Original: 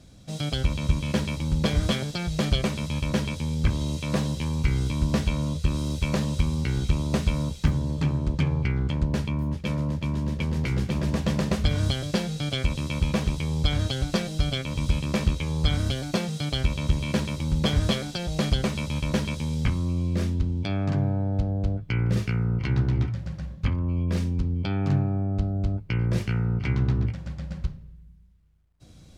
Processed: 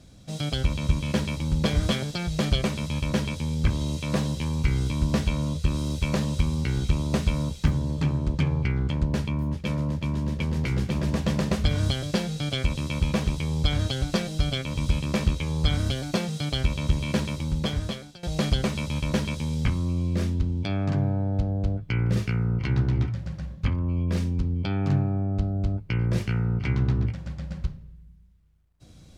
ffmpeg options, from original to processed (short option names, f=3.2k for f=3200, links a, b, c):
-filter_complex "[0:a]asplit=2[a][b];[a]atrim=end=18.23,asetpts=PTS-STARTPTS,afade=t=out:st=17.3:d=0.93:silence=0.105925[c];[b]atrim=start=18.23,asetpts=PTS-STARTPTS,afade=t=in:d=0.004:c=hsin:silence=0.105925[d];[c][d]concat=n=2:v=0:a=1"